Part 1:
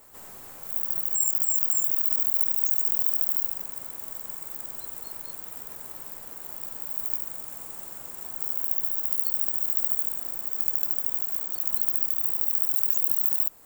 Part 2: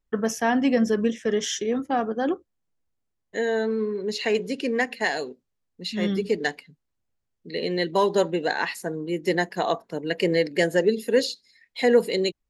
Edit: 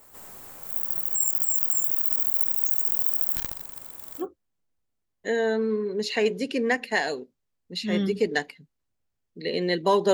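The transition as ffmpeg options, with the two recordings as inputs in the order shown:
-filter_complex "[0:a]asettb=1/sr,asplit=3[a][b][c];[a]atrim=end=3.364[d];[b]atrim=start=3.36:end=4.26,asetpts=PTS-STARTPTS,afade=t=in:d=0.004:c=qsin,afade=t=out:st=0.896:d=0.004:c=qsin,aeval=exprs='(tanh(6.31*val(0)+0.7)-tanh(0.7))/6.31':c=same[e];[c]atrim=start=4.256[f];[d][e]acrossfade=d=0.004:c1=hsin:c2=qsin[g];[g][f]acrossfade=d=0.004:c1=qsin:c2=hsin,apad=whole_dur=10.13,atrim=end=10.13,atrim=end=4.26,asetpts=PTS-STARTPTS[h];[1:a]atrim=start=2.27:end=8.22,asetpts=PTS-STARTPTS[i];[h][i]acrossfade=d=0.08:c1=tri:c2=tri"

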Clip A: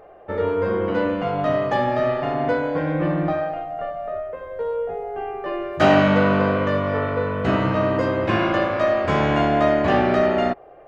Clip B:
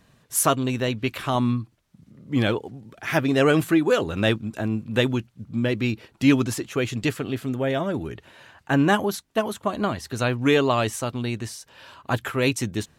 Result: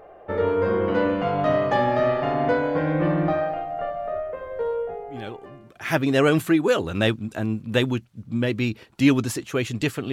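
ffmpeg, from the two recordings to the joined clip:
-filter_complex "[0:a]apad=whole_dur=10.12,atrim=end=10.12,atrim=end=5.96,asetpts=PTS-STARTPTS[a];[1:a]atrim=start=1.88:end=7.34,asetpts=PTS-STARTPTS[b];[a][b]acrossfade=d=1.3:c1=qua:c2=qua"

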